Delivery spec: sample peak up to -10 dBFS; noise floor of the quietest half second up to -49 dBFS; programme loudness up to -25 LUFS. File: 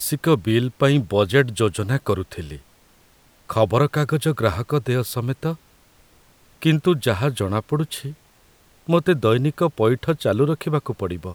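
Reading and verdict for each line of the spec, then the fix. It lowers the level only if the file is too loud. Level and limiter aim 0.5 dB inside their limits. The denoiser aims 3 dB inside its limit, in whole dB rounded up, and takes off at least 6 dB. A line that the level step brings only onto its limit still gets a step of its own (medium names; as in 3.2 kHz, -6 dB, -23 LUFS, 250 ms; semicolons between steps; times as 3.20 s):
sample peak -3.0 dBFS: fail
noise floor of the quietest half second -55 dBFS: pass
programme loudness -21.0 LUFS: fail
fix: trim -4.5 dB; peak limiter -10.5 dBFS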